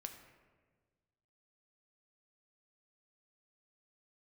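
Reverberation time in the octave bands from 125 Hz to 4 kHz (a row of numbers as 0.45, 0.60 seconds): 2.0, 1.8, 1.6, 1.3, 1.2, 0.85 seconds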